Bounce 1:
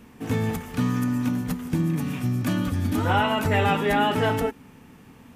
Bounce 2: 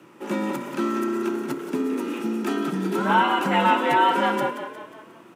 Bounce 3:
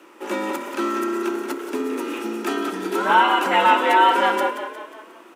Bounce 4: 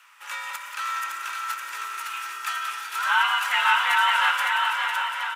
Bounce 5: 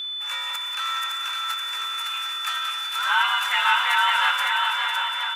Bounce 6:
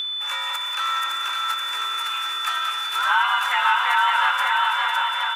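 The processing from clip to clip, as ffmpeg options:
-filter_complex "[0:a]equalizer=f=800:t=o:w=0.33:g=7,equalizer=f=1.25k:t=o:w=0.33:g=8,equalizer=f=2.5k:t=o:w=0.33:g=3,equalizer=f=12.5k:t=o:w=0.33:g=-6,afreqshift=99,asplit=6[a][b][c][d][e][f];[b]adelay=179,afreqshift=31,volume=-10dB[g];[c]adelay=358,afreqshift=62,volume=-16.2dB[h];[d]adelay=537,afreqshift=93,volume=-22.4dB[i];[e]adelay=716,afreqshift=124,volume=-28.6dB[j];[f]adelay=895,afreqshift=155,volume=-34.8dB[k];[a][g][h][i][j][k]amix=inputs=6:normalize=0,volume=-2dB"
-af "highpass=f=280:w=0.5412,highpass=f=280:w=1.3066,lowshelf=f=460:g=-3.5,volume=4.5dB"
-filter_complex "[0:a]highpass=f=1.2k:w=0.5412,highpass=f=1.2k:w=1.3066,asplit=2[a][b];[b]aecho=0:1:560|980|1295|1531|1708:0.631|0.398|0.251|0.158|0.1[c];[a][c]amix=inputs=2:normalize=0"
-af "aeval=exprs='val(0)+0.0398*sin(2*PI*3500*n/s)':c=same"
-filter_complex "[0:a]acrossover=split=690|1400[a][b][c];[a]acompressor=threshold=-43dB:ratio=4[d];[b]acompressor=threshold=-24dB:ratio=4[e];[c]acompressor=threshold=-34dB:ratio=4[f];[d][e][f]amix=inputs=3:normalize=0,volume=6.5dB"

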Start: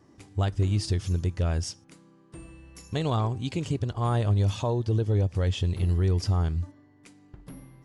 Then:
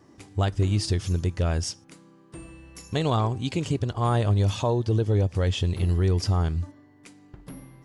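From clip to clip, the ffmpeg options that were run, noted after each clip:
-af "lowshelf=f=150:g=-4,volume=4dB"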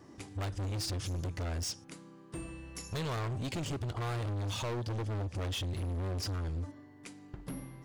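-filter_complex "[0:a]asplit=2[a][b];[b]acompressor=threshold=-30dB:ratio=6,volume=-3dB[c];[a][c]amix=inputs=2:normalize=0,volume=29dB,asoftclip=hard,volume=-29dB,volume=-4.5dB"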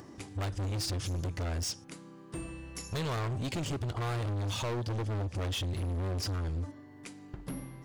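-af "acompressor=mode=upward:threshold=-48dB:ratio=2.5,volume=2dB"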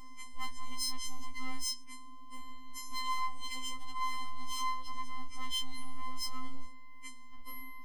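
-af "aeval=exprs='val(0)+0.00398*(sin(2*PI*60*n/s)+sin(2*PI*2*60*n/s)/2+sin(2*PI*3*60*n/s)/3+sin(2*PI*4*60*n/s)/4+sin(2*PI*5*60*n/s)/5)':c=same,afftfilt=real='hypot(re,im)*cos(PI*b)':imag='0':win_size=512:overlap=0.75,afftfilt=real='re*3.46*eq(mod(b,12),0)':imag='im*3.46*eq(mod(b,12),0)':win_size=2048:overlap=0.75,volume=1.5dB"

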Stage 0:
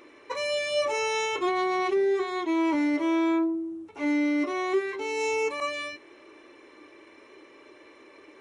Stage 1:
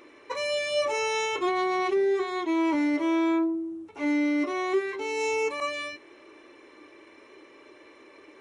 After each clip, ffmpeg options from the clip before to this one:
-af anull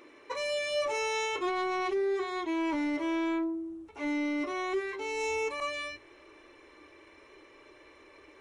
-af "bandreject=f=50:t=h:w=6,bandreject=f=100:t=h:w=6,asubboost=boost=8:cutoff=76,asoftclip=type=tanh:threshold=-20.5dB,volume=-2.5dB"

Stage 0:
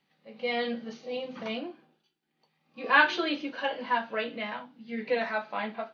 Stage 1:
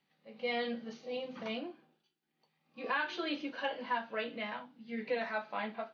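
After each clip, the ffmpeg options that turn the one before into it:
-af "alimiter=limit=-19dB:level=0:latency=1:release=424,volume=-4.5dB"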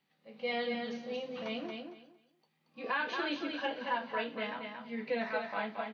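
-af "aecho=1:1:228|456|684:0.562|0.112|0.0225"

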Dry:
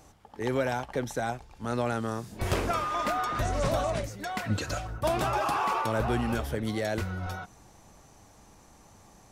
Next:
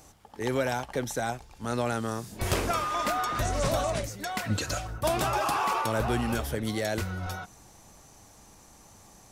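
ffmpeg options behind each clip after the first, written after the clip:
-af "highshelf=f=4.1k:g=7.5"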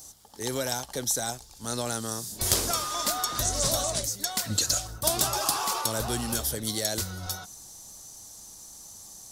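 -af "aexciter=amount=8.5:drive=3.7:freq=3.6k,highshelf=f=4.8k:g=-5.5,aeval=exprs='1*(cos(1*acos(clip(val(0)/1,-1,1)))-cos(1*PI/2))+0.282*(cos(4*acos(clip(val(0)/1,-1,1)))-cos(4*PI/2))+0.141*(cos(6*acos(clip(val(0)/1,-1,1)))-cos(6*PI/2))':c=same,volume=-3.5dB"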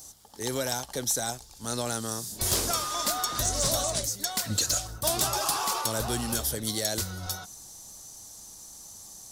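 -af "volume=18.5dB,asoftclip=hard,volume=-18.5dB"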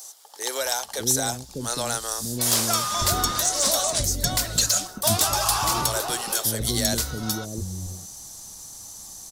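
-filter_complex "[0:a]acrossover=split=430[a][b];[a]adelay=600[c];[c][b]amix=inputs=2:normalize=0,volume=5.5dB"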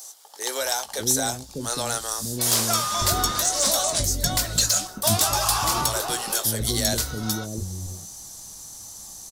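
-filter_complex "[0:a]asplit=2[a][b];[b]adelay=19,volume=-11dB[c];[a][c]amix=inputs=2:normalize=0"

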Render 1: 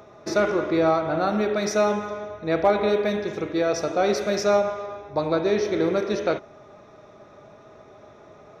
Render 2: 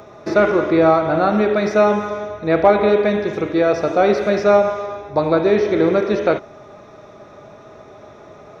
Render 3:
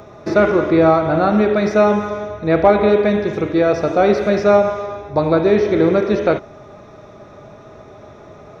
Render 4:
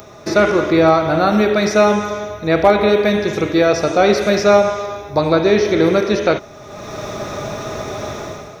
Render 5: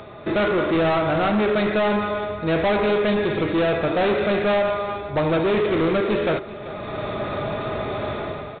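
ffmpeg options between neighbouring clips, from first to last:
-filter_complex "[0:a]acrossover=split=3400[a][b];[b]acompressor=threshold=-54dB:ratio=4:attack=1:release=60[c];[a][c]amix=inputs=2:normalize=0,volume=7dB"
-af "lowshelf=f=180:g=7.5"
-af "crystalizer=i=4.5:c=0,dynaudnorm=f=100:g=9:m=14dB,volume=-1dB"
-af "aresample=8000,asoftclip=type=tanh:threshold=-17dB,aresample=44100,aecho=1:1:386:0.168"

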